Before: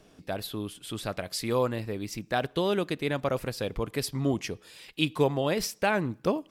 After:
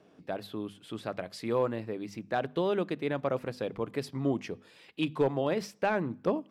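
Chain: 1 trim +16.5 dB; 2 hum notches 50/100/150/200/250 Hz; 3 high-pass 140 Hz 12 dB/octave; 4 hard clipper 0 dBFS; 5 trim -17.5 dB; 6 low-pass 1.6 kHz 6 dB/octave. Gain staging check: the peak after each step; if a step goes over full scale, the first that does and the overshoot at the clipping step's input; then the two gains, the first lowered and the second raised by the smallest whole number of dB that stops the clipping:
+7.0 dBFS, +6.5 dBFS, +5.0 dBFS, 0.0 dBFS, -17.5 dBFS, -17.5 dBFS; step 1, 5.0 dB; step 1 +11.5 dB, step 5 -12.5 dB

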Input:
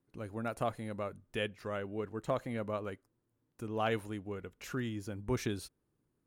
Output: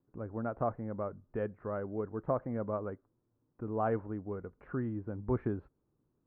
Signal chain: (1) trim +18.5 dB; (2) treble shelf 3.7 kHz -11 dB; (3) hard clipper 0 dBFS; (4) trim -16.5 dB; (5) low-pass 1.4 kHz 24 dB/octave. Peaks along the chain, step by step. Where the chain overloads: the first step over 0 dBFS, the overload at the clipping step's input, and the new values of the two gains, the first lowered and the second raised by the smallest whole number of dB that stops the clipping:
-1.0 dBFS, -2.5 dBFS, -2.5 dBFS, -19.0 dBFS, -19.0 dBFS; nothing clips

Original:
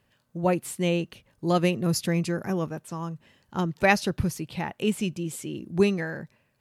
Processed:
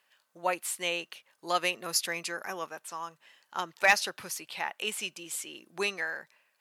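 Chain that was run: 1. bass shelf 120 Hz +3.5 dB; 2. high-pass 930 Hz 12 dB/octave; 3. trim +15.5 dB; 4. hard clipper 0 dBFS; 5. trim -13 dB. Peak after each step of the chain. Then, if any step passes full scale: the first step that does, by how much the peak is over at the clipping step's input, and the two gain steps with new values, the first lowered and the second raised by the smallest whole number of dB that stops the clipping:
-6.5 dBFS, -6.5 dBFS, +9.0 dBFS, 0.0 dBFS, -13.0 dBFS; step 3, 9.0 dB; step 3 +6.5 dB, step 5 -4 dB

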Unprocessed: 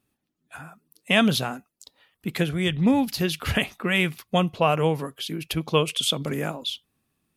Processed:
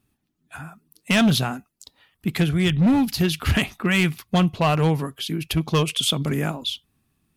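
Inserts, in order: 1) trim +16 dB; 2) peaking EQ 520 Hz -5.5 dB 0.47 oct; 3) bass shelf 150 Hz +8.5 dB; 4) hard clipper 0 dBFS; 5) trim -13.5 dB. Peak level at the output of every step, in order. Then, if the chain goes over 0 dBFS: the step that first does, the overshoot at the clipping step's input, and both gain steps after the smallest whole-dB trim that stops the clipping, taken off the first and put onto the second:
+11.0 dBFS, +10.5 dBFS, +10.0 dBFS, 0.0 dBFS, -13.5 dBFS; step 1, 10.0 dB; step 1 +6 dB, step 5 -3.5 dB

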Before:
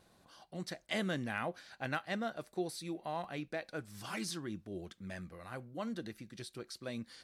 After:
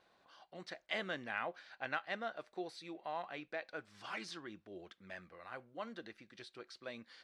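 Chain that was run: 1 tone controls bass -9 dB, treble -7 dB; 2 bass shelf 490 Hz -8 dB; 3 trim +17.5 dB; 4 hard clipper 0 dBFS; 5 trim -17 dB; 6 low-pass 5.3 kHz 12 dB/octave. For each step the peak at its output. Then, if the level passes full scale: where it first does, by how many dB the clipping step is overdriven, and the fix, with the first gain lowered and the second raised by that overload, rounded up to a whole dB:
-22.0 dBFS, -23.0 dBFS, -5.5 dBFS, -5.5 dBFS, -22.5 dBFS, -22.5 dBFS; nothing clips

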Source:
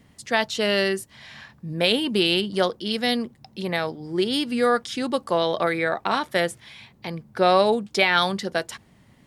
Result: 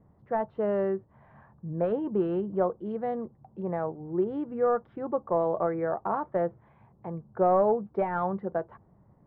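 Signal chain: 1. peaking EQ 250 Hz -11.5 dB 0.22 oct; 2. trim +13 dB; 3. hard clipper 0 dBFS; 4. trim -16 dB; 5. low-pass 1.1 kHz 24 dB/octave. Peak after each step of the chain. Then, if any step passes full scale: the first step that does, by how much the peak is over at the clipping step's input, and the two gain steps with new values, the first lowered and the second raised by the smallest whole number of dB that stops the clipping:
-6.0 dBFS, +7.0 dBFS, 0.0 dBFS, -16.0 dBFS, -14.5 dBFS; step 2, 7.0 dB; step 2 +6 dB, step 4 -9 dB

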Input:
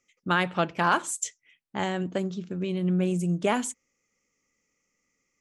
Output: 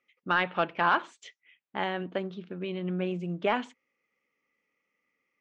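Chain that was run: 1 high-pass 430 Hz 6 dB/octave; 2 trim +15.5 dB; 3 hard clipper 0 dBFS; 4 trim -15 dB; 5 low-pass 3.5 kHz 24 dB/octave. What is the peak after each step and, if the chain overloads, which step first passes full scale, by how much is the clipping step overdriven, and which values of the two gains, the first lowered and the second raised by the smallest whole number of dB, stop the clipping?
-10.5 dBFS, +5.0 dBFS, 0.0 dBFS, -15.0 dBFS, -14.0 dBFS; step 2, 5.0 dB; step 2 +10.5 dB, step 4 -10 dB

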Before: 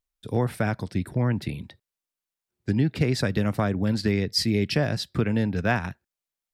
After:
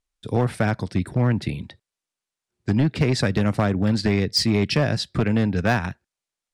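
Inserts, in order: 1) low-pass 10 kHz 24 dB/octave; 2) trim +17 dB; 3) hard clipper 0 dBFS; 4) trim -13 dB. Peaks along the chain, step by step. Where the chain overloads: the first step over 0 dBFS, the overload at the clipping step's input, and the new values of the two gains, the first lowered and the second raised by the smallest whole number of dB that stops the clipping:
-10.5 dBFS, +6.5 dBFS, 0.0 dBFS, -13.0 dBFS; step 2, 6.5 dB; step 2 +10 dB, step 4 -6 dB

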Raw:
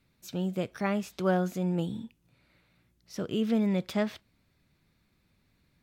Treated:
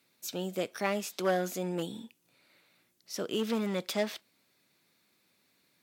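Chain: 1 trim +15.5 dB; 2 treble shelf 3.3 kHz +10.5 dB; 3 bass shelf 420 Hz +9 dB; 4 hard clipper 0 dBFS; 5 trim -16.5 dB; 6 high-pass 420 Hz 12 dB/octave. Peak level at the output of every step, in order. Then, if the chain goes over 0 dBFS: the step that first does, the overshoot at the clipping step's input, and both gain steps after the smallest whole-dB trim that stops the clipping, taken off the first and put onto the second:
+1.5 dBFS, +2.0 dBFS, +6.5 dBFS, 0.0 dBFS, -16.5 dBFS, -14.5 dBFS; step 1, 6.5 dB; step 1 +8.5 dB, step 5 -9.5 dB

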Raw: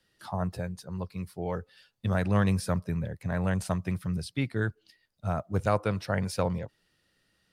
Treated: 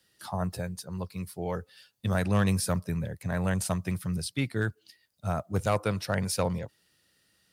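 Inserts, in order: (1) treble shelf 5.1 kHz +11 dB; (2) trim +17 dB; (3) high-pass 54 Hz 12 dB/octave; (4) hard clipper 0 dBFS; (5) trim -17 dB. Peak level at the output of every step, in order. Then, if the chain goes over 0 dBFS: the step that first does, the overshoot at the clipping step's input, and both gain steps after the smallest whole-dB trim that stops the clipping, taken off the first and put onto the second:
-10.5 dBFS, +6.5 dBFS, +5.5 dBFS, 0.0 dBFS, -17.0 dBFS; step 2, 5.5 dB; step 2 +11 dB, step 5 -11 dB

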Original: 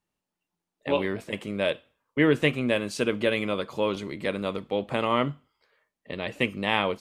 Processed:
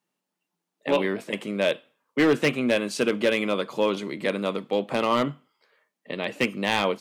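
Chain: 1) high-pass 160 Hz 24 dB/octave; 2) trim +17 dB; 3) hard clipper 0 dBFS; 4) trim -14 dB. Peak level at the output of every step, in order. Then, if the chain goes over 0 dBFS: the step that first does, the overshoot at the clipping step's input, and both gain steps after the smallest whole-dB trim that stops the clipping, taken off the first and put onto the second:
-8.0 dBFS, +9.0 dBFS, 0.0 dBFS, -14.0 dBFS; step 2, 9.0 dB; step 2 +8 dB, step 4 -5 dB

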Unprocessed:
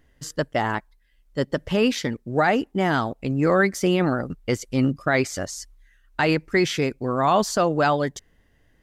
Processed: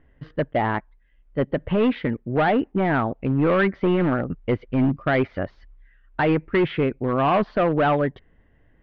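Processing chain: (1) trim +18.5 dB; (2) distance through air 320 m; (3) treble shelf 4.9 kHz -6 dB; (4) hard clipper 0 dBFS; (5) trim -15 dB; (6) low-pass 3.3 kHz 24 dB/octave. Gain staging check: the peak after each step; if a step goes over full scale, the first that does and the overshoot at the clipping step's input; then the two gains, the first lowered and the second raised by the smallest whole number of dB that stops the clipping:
+9.0 dBFS, +8.0 dBFS, +8.0 dBFS, 0.0 dBFS, -15.0 dBFS, -13.5 dBFS; step 1, 8.0 dB; step 1 +10.5 dB, step 5 -7 dB

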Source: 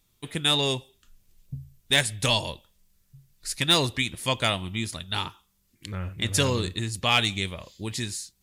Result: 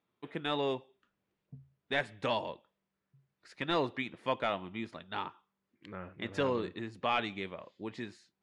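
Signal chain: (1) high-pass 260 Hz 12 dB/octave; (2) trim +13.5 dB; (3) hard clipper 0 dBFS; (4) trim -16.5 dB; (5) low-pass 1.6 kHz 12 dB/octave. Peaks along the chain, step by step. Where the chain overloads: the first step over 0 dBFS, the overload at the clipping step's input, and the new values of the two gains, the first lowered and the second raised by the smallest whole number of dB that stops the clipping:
-7.5 dBFS, +6.0 dBFS, 0.0 dBFS, -16.5 dBFS, -18.0 dBFS; step 2, 6.0 dB; step 2 +7.5 dB, step 4 -10.5 dB

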